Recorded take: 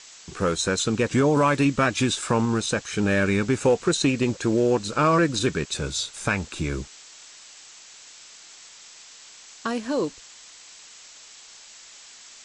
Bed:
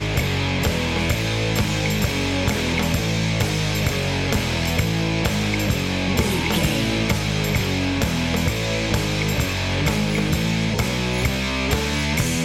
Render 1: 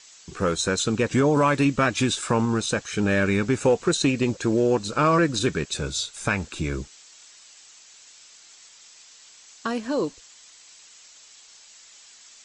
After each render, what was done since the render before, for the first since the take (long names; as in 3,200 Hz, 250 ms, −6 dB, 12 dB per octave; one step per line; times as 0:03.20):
broadband denoise 6 dB, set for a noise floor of −47 dBFS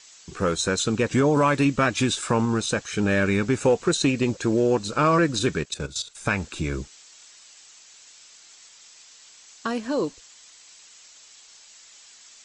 0:05.61–0:06.26: output level in coarse steps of 14 dB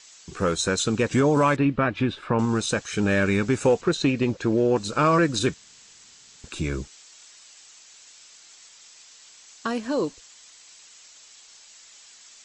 0:01.56–0:02.39: high-frequency loss of the air 390 metres
0:03.81–0:04.76: high-frequency loss of the air 110 metres
0:05.54–0:06.44: fill with room tone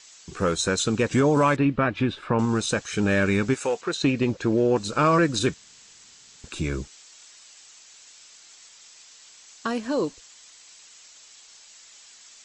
0:03.53–0:04.02: high-pass filter 1,100 Hz → 500 Hz 6 dB per octave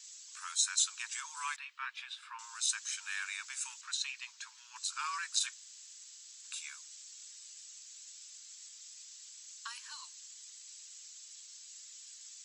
Chebyshev high-pass filter 900 Hz, order 8
first difference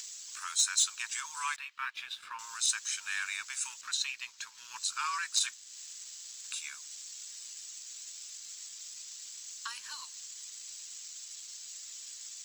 leveller curve on the samples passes 1
upward compression, threshold −38 dBFS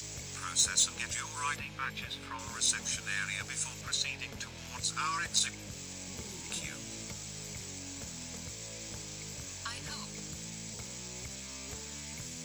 mix in bed −25.5 dB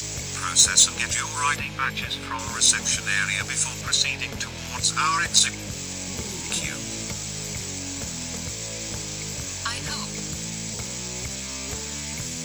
level +11.5 dB